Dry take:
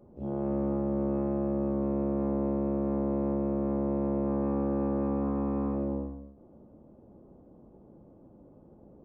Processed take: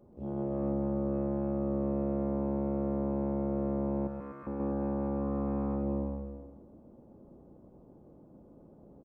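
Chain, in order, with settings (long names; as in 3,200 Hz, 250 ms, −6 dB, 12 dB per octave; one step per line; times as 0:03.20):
0:04.07–0:04.47: Butterworth high-pass 1,100 Hz 72 dB per octave
brickwall limiter −25 dBFS, peak gain reduction 5 dB
bouncing-ball delay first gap 130 ms, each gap 0.9×, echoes 5
level −3 dB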